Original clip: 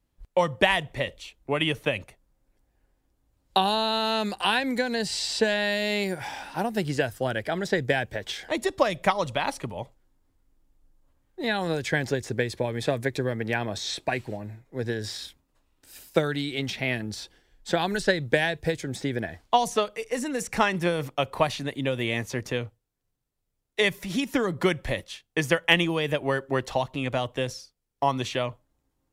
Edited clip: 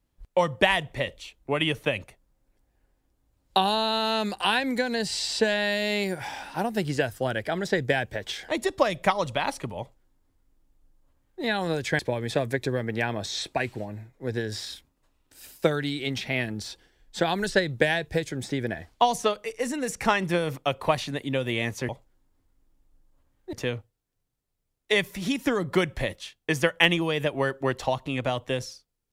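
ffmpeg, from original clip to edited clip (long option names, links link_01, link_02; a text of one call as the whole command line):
ffmpeg -i in.wav -filter_complex "[0:a]asplit=4[link_01][link_02][link_03][link_04];[link_01]atrim=end=11.992[link_05];[link_02]atrim=start=12.508:end=22.412[link_06];[link_03]atrim=start=9.788:end=11.432[link_07];[link_04]atrim=start=22.408[link_08];[link_05][link_06]acrossfade=duration=0.004:curve1=hsin:curve2=hsin[link_09];[link_09][link_07]acrossfade=duration=0.004:curve1=hsin:curve2=hsin[link_10];[link_10][link_08]acrossfade=duration=0.004:curve1=hsin:curve2=hsin" out.wav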